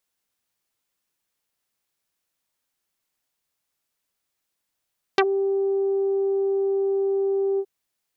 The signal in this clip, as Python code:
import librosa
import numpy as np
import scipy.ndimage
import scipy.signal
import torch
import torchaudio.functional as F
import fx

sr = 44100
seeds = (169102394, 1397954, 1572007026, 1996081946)

y = fx.sub_voice(sr, note=67, wave='saw', cutoff_hz=510.0, q=1.4, env_oct=3.5, env_s=0.06, attack_ms=2.2, decay_s=0.06, sustain_db=-9.5, release_s=0.06, note_s=2.41, slope=24)